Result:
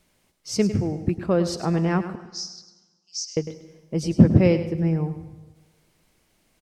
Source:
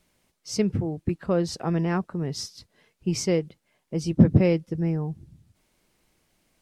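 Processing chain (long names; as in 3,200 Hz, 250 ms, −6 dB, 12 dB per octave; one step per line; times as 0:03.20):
0:02.15–0:03.37: flat-topped band-pass 5,500 Hz, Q 2.7
on a send: single-tap delay 103 ms −12 dB
on the sum: dense smooth reverb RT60 1.3 s, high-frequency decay 0.8×, pre-delay 115 ms, DRR 16 dB
level +2.5 dB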